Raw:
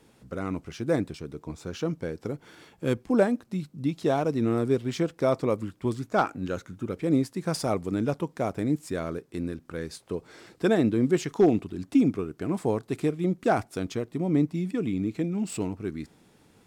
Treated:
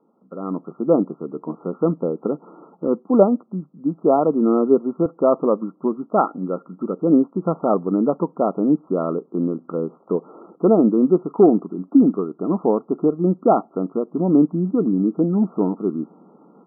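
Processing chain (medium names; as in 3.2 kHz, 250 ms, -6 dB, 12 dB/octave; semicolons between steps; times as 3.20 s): block-companded coder 7-bit; brick-wall FIR band-pass 160–1400 Hz; level rider gain up to 14 dB; 2.87–5.06 s: three bands expanded up and down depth 40%; trim -2.5 dB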